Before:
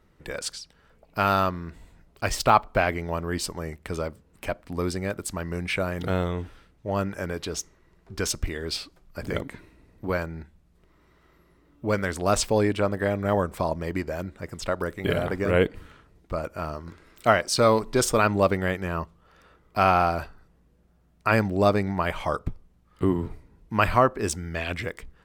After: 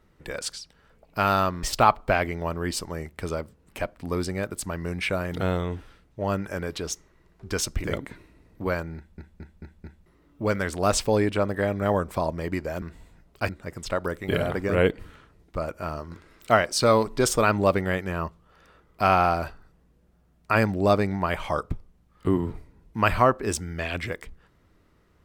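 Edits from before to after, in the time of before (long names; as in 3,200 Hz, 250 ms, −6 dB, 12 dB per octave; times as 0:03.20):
0:01.63–0:02.30: move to 0:14.25
0:08.51–0:09.27: remove
0:10.39: stutter in place 0.22 s, 5 plays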